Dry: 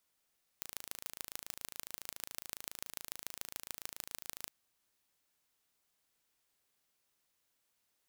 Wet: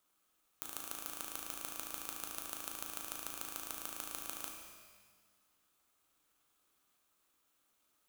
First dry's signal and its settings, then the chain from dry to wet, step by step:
impulse train 27.2 per second, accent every 4, −11.5 dBFS 3.89 s
thirty-one-band graphic EQ 125 Hz −11 dB, 315 Hz +7 dB, 1,250 Hz +10 dB, 2,000 Hz −10 dB, 5,000 Hz −9 dB
surface crackle 290 per second −69 dBFS
reverb with rising layers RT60 1.5 s, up +12 semitones, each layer −8 dB, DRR 1 dB

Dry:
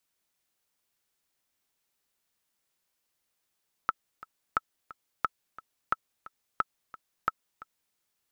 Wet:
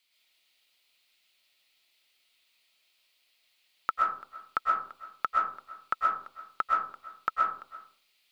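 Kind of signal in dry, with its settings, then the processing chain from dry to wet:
click track 177 BPM, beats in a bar 2, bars 6, 1,310 Hz, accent 19 dB −11.5 dBFS
low-shelf EQ 280 Hz −9.5 dB
noise in a band 2,100–4,700 Hz −76 dBFS
comb and all-pass reverb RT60 0.53 s, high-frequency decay 0.4×, pre-delay 85 ms, DRR −3 dB

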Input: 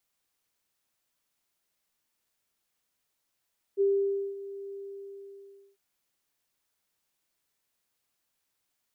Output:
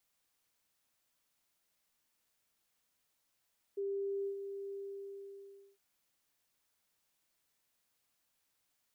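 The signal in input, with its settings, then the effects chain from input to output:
note with an ADSR envelope sine 396 Hz, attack 38 ms, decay 542 ms, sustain −16.5 dB, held 0.96 s, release 1,040 ms −20.5 dBFS
notch filter 380 Hz, Q 12
brickwall limiter −34 dBFS

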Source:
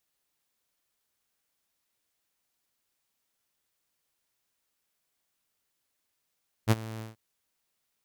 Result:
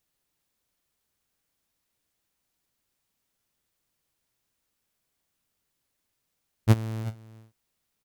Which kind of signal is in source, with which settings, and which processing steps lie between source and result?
note with an ADSR envelope saw 111 Hz, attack 41 ms, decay 33 ms, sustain −19.5 dB, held 0.34 s, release 147 ms −14.5 dBFS
low-shelf EQ 300 Hz +9 dB
single-tap delay 368 ms −17 dB

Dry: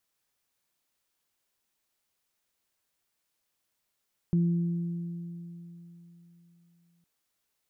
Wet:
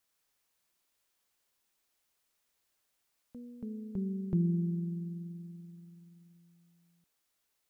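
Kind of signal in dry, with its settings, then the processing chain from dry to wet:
harmonic partials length 2.71 s, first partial 171 Hz, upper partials −14 dB, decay 3.54 s, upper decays 2.82 s, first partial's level −20.5 dB
parametric band 140 Hz −3.5 dB 1.5 octaves
delay with pitch and tempo change per echo 95 ms, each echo +2 semitones, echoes 3, each echo −6 dB

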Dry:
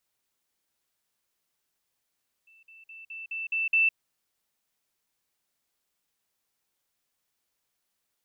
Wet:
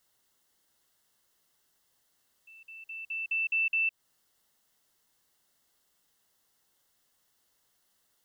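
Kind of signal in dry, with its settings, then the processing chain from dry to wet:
level staircase 2,660 Hz −55 dBFS, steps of 6 dB, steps 7, 0.16 s 0.05 s
in parallel at +2 dB: downward compressor, threshold −33 dBFS
on the sum: brickwall limiter −22.5 dBFS
Butterworth band-reject 2,400 Hz, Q 5.8

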